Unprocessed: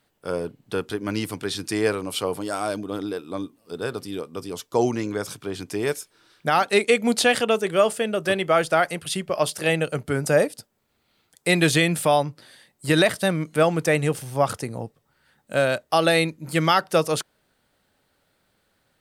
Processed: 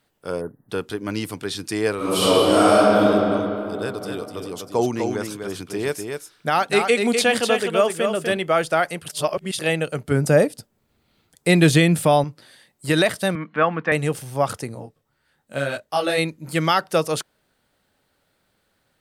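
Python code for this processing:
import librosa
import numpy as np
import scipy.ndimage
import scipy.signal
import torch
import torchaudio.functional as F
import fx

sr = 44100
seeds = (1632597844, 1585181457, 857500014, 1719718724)

y = fx.spec_erase(x, sr, start_s=0.41, length_s=0.28, low_hz=2000.0, high_hz=9200.0)
y = fx.reverb_throw(y, sr, start_s=1.96, length_s=1.09, rt60_s=3.0, drr_db=-12.0)
y = fx.echo_single(y, sr, ms=249, db=-5.5, at=(3.76, 8.37))
y = fx.low_shelf(y, sr, hz=370.0, db=8.5, at=(10.11, 12.24))
y = fx.cabinet(y, sr, low_hz=210.0, low_slope=12, high_hz=3000.0, hz=(210.0, 380.0, 590.0, 1100.0, 1700.0), db=(8, -8, -4, 8, 7), at=(13.35, 13.92))
y = fx.detune_double(y, sr, cents=24, at=(14.74, 16.17), fade=0.02)
y = fx.edit(y, sr, fx.reverse_span(start_s=9.08, length_s=0.51), tone=tone)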